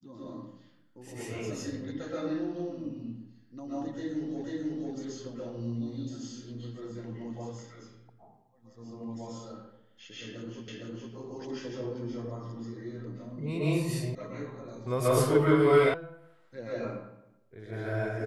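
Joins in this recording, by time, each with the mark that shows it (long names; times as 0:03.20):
0:04.44: the same again, the last 0.49 s
0:10.68: the same again, the last 0.46 s
0:14.15: cut off before it has died away
0:15.94: cut off before it has died away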